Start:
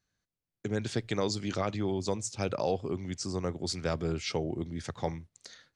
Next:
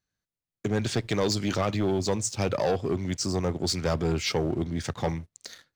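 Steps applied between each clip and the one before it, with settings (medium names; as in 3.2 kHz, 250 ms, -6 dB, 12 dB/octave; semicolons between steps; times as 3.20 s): waveshaping leveller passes 2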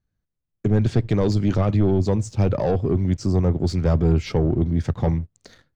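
tilt EQ -3.5 dB/octave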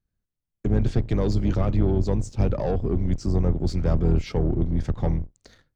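octave divider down 2 oct, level 0 dB; trim -4.5 dB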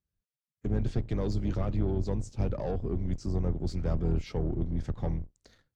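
trim -7.5 dB; Vorbis 64 kbps 44.1 kHz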